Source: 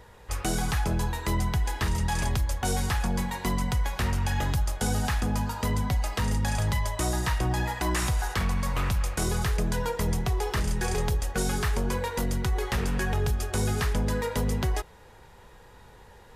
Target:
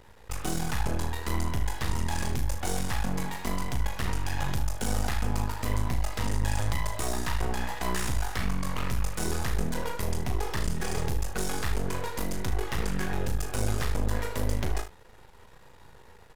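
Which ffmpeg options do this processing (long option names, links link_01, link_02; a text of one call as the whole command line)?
ffmpeg -i in.wav -filter_complex "[0:a]aeval=exprs='max(val(0),0)':channel_layout=same,asplit=2[link_01][link_02];[link_02]aecho=0:1:37|76:0.447|0.237[link_03];[link_01][link_03]amix=inputs=2:normalize=0" out.wav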